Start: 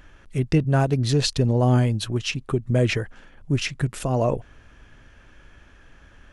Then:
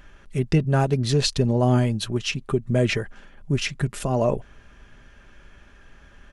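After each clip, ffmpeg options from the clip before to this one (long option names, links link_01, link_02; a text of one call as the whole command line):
ffmpeg -i in.wav -af "aecho=1:1:5:0.31" out.wav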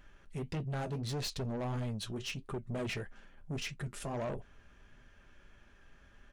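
ffmpeg -i in.wav -af "flanger=delay=7.8:depth=4.7:regen=-57:speed=1.6:shape=triangular,asoftclip=type=tanh:threshold=-27dB,volume=-6dB" out.wav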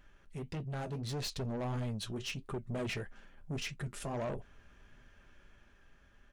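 ffmpeg -i in.wav -af "dynaudnorm=framelen=240:gausssize=9:maxgain=3dB,volume=-3dB" out.wav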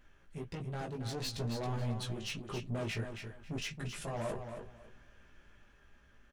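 ffmpeg -i in.wav -filter_complex "[0:a]flanger=delay=16.5:depth=2.3:speed=1.5,asplit=2[link_01][link_02];[link_02]aecho=0:1:273|546|819:0.422|0.0886|0.0186[link_03];[link_01][link_03]amix=inputs=2:normalize=0,volume=2.5dB" out.wav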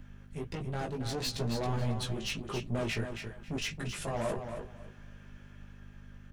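ffmpeg -i in.wav -filter_complex "[0:a]aeval=exprs='val(0)+0.00316*(sin(2*PI*50*n/s)+sin(2*PI*2*50*n/s)/2+sin(2*PI*3*50*n/s)/3+sin(2*PI*4*50*n/s)/4+sin(2*PI*5*50*n/s)/5)':channel_layout=same,acrossover=split=130|1400|2300[link_01][link_02][link_03][link_04];[link_01]aeval=exprs='max(val(0),0)':channel_layout=same[link_05];[link_05][link_02][link_03][link_04]amix=inputs=4:normalize=0,volume=4.5dB" out.wav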